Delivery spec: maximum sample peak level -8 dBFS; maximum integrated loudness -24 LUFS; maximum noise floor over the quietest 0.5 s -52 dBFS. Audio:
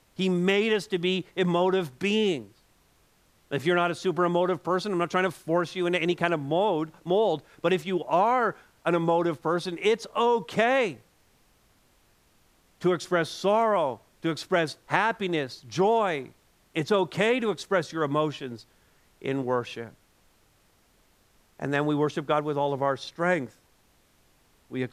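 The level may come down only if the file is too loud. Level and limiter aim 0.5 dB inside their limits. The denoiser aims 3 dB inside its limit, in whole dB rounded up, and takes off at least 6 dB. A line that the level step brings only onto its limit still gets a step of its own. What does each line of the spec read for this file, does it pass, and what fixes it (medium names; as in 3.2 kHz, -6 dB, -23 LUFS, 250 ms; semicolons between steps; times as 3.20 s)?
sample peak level -6.0 dBFS: fail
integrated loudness -26.5 LUFS: pass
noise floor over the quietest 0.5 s -64 dBFS: pass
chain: peak limiter -8.5 dBFS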